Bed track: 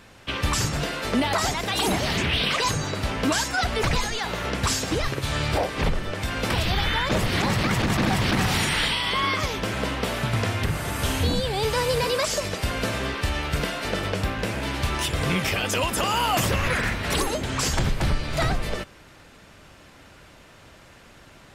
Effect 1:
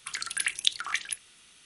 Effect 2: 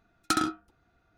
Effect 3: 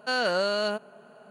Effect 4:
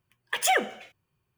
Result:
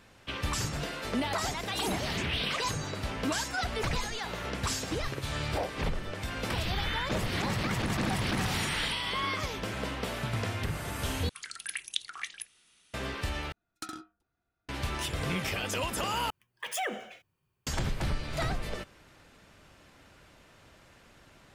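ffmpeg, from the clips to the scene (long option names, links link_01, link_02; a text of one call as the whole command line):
ffmpeg -i bed.wav -i cue0.wav -i cue1.wav -i cue2.wav -i cue3.wav -filter_complex "[1:a]asplit=2[link_01][link_02];[0:a]volume=-8dB[link_03];[link_01]acompressor=threshold=-36dB:ratio=6:attack=3.2:release=140:knee=1:detection=peak[link_04];[2:a]highshelf=frequency=4300:gain=5[link_05];[4:a]alimiter=limit=-21.5dB:level=0:latency=1:release=77[link_06];[link_03]asplit=4[link_07][link_08][link_09][link_10];[link_07]atrim=end=11.294[link_11];[link_02]atrim=end=1.65,asetpts=PTS-STARTPTS,volume=-8dB[link_12];[link_08]atrim=start=12.936:end=13.524[link_13];[link_05]atrim=end=1.17,asetpts=PTS-STARTPTS,volume=-15.5dB[link_14];[link_09]atrim=start=14.686:end=16.304[link_15];[link_06]atrim=end=1.37,asetpts=PTS-STARTPTS,volume=-2.5dB[link_16];[link_10]atrim=start=17.666[link_17];[link_04]atrim=end=1.65,asetpts=PTS-STARTPTS,volume=-6dB,afade=type=in:duration=0.004:curve=hsin,afade=type=out:start_time=1.646:duration=0.004:curve=hsin,adelay=7790[link_18];[link_11][link_12]acrossfade=duration=0.004:curve1=hsin:curve2=hsin[link_19];[link_19][link_13]acrossfade=duration=0.004:curve1=hsin:curve2=hsin[link_20];[link_20][link_14]acrossfade=duration=0.004:curve1=hsin:curve2=hsin[link_21];[link_21][link_15]acrossfade=duration=0.004:curve1=hsin:curve2=hsin[link_22];[link_22][link_16]acrossfade=duration=0.004:curve1=hsin:curve2=hsin[link_23];[link_23][link_17]acrossfade=duration=0.004:curve1=hsin:curve2=hsin[link_24];[link_24][link_18]amix=inputs=2:normalize=0" out.wav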